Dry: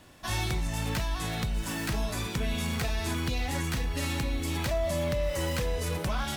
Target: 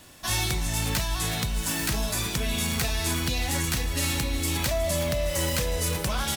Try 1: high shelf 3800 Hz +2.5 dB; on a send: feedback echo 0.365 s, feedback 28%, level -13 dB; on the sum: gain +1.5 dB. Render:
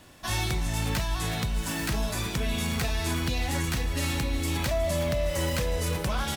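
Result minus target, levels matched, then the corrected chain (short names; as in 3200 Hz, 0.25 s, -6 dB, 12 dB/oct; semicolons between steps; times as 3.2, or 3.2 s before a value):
8000 Hz band -4.5 dB
high shelf 3800 Hz +10.5 dB; on a send: feedback echo 0.365 s, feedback 28%, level -13 dB; on the sum: gain +1.5 dB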